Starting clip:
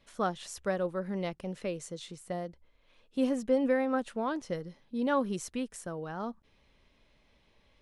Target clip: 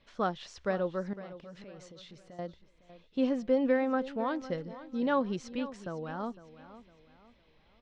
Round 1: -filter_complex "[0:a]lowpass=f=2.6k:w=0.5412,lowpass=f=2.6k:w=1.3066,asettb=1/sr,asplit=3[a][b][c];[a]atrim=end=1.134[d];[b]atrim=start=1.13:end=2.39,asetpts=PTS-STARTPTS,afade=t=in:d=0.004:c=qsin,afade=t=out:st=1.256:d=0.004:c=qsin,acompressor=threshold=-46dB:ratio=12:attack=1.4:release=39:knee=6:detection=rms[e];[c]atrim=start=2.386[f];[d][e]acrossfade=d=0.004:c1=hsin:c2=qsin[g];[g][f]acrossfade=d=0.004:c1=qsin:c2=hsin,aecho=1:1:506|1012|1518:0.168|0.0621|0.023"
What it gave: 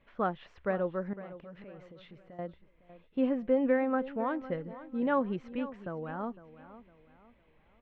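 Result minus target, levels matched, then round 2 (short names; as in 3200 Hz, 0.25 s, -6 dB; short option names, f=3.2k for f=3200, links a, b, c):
4000 Hz band -8.5 dB
-filter_complex "[0:a]lowpass=f=5.2k:w=0.5412,lowpass=f=5.2k:w=1.3066,asettb=1/sr,asplit=3[a][b][c];[a]atrim=end=1.134[d];[b]atrim=start=1.13:end=2.39,asetpts=PTS-STARTPTS,afade=t=in:d=0.004:c=qsin,afade=t=out:st=1.256:d=0.004:c=qsin,acompressor=threshold=-46dB:ratio=12:attack=1.4:release=39:knee=6:detection=rms[e];[c]atrim=start=2.386[f];[d][e]acrossfade=d=0.004:c1=hsin:c2=qsin[g];[g][f]acrossfade=d=0.004:c1=qsin:c2=hsin,aecho=1:1:506|1012|1518:0.168|0.0621|0.023"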